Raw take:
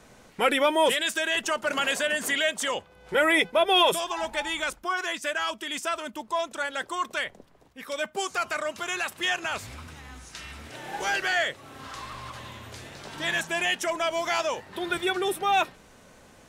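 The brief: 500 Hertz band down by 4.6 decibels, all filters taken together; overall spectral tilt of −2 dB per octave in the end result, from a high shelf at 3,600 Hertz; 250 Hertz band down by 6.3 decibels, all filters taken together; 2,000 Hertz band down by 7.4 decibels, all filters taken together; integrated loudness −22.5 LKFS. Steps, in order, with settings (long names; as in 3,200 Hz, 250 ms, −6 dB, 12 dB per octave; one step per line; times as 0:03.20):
parametric band 250 Hz −7 dB
parametric band 500 Hz −4 dB
parametric band 2,000 Hz −8 dB
high-shelf EQ 3,600 Hz −5 dB
level +9 dB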